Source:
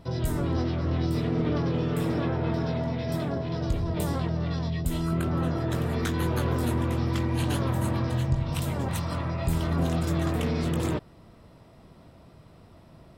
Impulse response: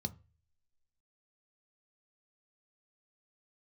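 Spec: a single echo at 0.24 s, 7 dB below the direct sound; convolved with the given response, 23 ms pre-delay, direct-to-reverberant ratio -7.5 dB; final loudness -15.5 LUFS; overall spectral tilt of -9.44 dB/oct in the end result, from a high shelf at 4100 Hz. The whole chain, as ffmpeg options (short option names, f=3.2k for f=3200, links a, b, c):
-filter_complex "[0:a]highshelf=f=4.1k:g=9,aecho=1:1:240:0.447,asplit=2[a][b];[1:a]atrim=start_sample=2205,adelay=23[c];[b][c]afir=irnorm=-1:irlink=0,volume=8.5dB[d];[a][d]amix=inputs=2:normalize=0,volume=-4.5dB"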